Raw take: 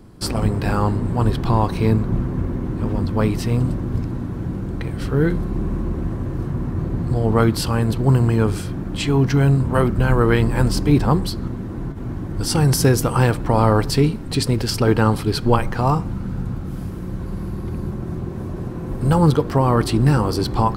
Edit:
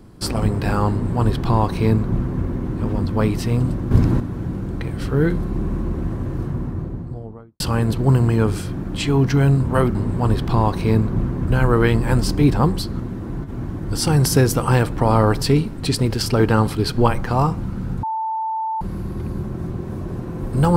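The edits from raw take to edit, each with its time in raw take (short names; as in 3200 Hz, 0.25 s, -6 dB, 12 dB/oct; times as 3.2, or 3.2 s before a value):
0.91–2.43 copy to 9.95
3.91–4.2 gain +8.5 dB
6.33–7.6 studio fade out
16.51–17.29 bleep 886 Hz -20.5 dBFS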